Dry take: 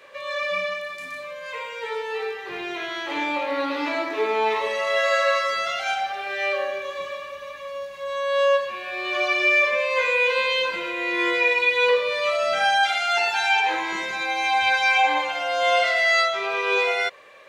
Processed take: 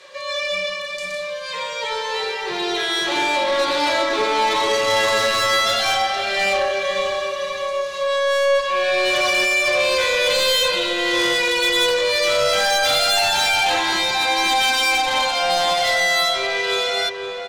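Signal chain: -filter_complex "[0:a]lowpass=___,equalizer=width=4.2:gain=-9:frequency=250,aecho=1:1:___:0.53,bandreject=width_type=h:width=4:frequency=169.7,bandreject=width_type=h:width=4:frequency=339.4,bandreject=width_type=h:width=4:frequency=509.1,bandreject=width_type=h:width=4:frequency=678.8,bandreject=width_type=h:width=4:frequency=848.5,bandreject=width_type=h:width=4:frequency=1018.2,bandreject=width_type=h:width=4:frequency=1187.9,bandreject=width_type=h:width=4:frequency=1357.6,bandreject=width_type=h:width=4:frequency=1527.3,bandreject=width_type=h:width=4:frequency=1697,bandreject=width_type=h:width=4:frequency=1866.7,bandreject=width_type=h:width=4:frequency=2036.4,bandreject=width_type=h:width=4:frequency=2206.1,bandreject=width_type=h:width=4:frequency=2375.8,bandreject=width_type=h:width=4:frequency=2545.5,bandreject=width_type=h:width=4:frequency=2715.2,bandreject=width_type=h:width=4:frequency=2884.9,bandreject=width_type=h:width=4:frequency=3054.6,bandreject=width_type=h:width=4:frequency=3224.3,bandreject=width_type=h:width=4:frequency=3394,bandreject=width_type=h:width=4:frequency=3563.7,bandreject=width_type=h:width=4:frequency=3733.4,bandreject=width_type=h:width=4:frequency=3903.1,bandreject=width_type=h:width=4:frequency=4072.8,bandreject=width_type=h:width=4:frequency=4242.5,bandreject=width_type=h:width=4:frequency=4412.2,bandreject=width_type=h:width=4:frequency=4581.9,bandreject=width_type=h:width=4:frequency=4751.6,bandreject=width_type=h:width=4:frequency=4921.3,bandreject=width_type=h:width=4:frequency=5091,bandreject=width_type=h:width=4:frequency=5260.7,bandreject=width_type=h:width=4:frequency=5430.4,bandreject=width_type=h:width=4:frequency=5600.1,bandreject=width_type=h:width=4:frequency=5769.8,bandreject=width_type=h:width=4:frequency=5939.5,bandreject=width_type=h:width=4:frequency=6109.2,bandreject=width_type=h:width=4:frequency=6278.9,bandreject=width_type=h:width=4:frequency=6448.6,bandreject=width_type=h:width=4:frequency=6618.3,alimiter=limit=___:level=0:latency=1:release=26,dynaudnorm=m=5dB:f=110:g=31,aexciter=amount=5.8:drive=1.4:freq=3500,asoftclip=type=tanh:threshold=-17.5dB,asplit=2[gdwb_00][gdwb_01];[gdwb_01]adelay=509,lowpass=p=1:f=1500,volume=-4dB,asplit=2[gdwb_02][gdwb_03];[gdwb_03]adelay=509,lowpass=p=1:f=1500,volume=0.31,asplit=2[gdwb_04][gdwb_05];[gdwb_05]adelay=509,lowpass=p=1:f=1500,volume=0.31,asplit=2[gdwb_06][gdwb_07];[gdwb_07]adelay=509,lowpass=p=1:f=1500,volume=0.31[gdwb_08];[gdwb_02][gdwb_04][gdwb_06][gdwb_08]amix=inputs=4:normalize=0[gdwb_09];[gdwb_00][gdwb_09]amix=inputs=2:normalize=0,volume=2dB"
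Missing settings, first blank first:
6000, 5.5, -13dB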